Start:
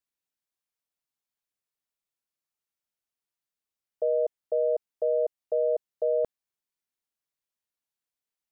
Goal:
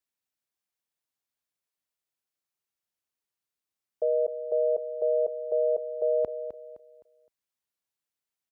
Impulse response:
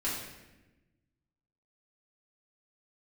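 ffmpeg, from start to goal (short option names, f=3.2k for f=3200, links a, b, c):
-af "highpass=45,aecho=1:1:258|516|774|1032:0.299|0.0985|0.0325|0.0107"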